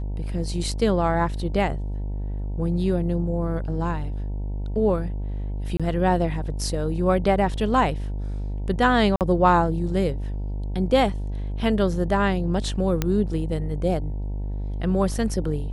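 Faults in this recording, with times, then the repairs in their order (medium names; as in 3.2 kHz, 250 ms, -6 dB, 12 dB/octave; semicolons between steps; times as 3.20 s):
buzz 50 Hz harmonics 19 -28 dBFS
5.77–5.80 s: dropout 26 ms
9.16–9.21 s: dropout 48 ms
13.02 s: pop -8 dBFS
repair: de-click; de-hum 50 Hz, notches 19; interpolate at 5.77 s, 26 ms; interpolate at 9.16 s, 48 ms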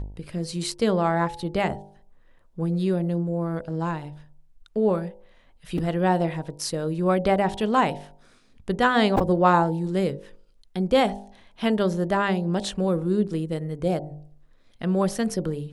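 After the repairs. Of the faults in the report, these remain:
13.02 s: pop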